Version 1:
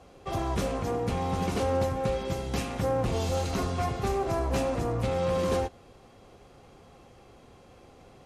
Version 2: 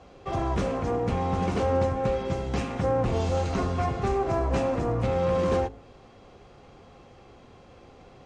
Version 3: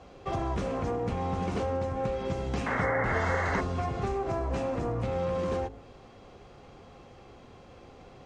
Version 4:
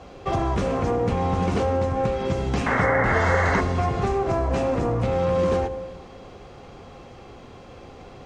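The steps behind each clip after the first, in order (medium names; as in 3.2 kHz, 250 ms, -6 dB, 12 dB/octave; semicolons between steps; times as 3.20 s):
Bessel low-pass 5.4 kHz, order 6; de-hum 54.17 Hz, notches 16; dynamic bell 4.1 kHz, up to -5 dB, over -56 dBFS, Q 0.96; trim +3 dB
compression, threshold -27 dBFS, peak gain reduction 8 dB; painted sound noise, 2.66–3.61 s, 380–2200 Hz -31 dBFS
reverberation RT60 2.0 s, pre-delay 85 ms, DRR 15 dB; trim +7.5 dB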